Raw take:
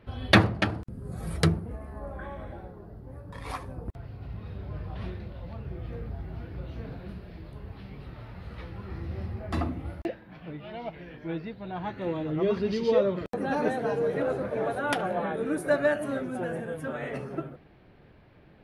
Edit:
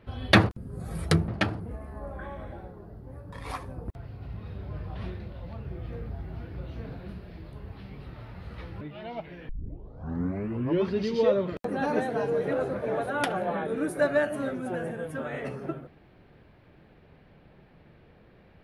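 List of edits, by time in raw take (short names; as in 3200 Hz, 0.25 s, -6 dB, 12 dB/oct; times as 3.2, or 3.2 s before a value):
0.49–0.81 move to 1.6
8.81–10.5 cut
11.18 tape start 1.42 s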